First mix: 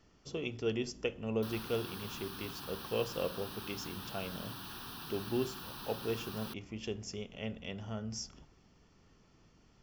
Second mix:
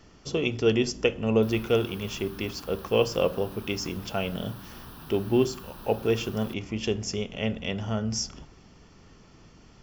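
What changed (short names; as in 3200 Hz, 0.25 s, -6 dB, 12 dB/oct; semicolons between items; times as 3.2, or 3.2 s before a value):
speech +11.5 dB; background: add bell 4100 Hz -7 dB 1.3 oct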